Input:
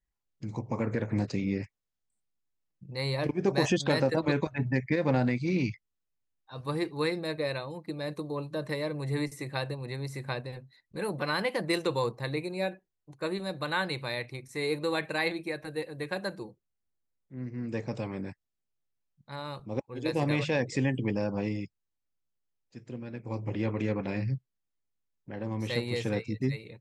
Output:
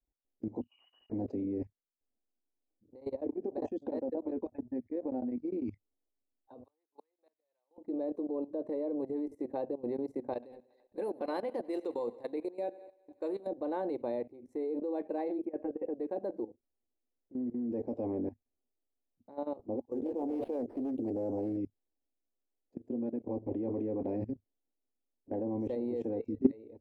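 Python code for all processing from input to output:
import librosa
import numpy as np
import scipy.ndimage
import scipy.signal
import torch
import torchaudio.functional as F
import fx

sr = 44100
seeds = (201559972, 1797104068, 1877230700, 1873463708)

y = fx.chain(x, sr, fx.ladder_highpass(hz=470.0, resonance_pct=70),
    fx.freq_invert(carrier_hz=3400), at=(0.61, 1.1))
y = fx.chain(y, sr, fx.level_steps(step_db=10),
    fx.tremolo_abs(hz=10.0), at=(2.86, 5.62))
y = fx.chain(y, sr, fx.gate_flip(shuts_db=-25.0, range_db=-35),
    fx.highpass(hz=1400.0, slope=12), at=(6.64, 7.78))
y = fx.chain(y, sr, fx.tilt_shelf(db=-8.0, hz=1200.0),
    fx.echo_thinned(ms=93, feedback_pct=69, hz=210.0, wet_db=-17), at=(10.33, 13.47))
y = fx.chain(y, sr, fx.brickwall_lowpass(high_hz=3400.0),
    fx.over_compress(threshold_db=-39.0, ratio=-1.0), at=(15.45, 15.94))
y = fx.chain(y, sr, fx.peak_eq(hz=190.0, db=-6.0, octaves=0.32),
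    fx.sample_hold(seeds[0], rate_hz=6800.0, jitter_pct=0),
    fx.doppler_dist(depth_ms=0.46), at=(19.79, 21.57))
y = fx.curve_eq(y, sr, hz=(100.0, 150.0, 240.0, 760.0, 1300.0, 3900.0), db=(0, -25, 11, 6, -16, -23))
y = fx.level_steps(y, sr, step_db=17)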